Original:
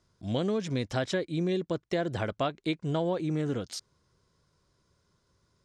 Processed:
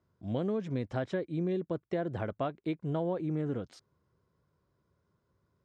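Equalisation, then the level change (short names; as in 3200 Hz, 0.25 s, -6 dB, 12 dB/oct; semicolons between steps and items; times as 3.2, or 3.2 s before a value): HPF 62 Hz; air absorption 59 m; bell 5400 Hz -13 dB 2.3 oct; -2.5 dB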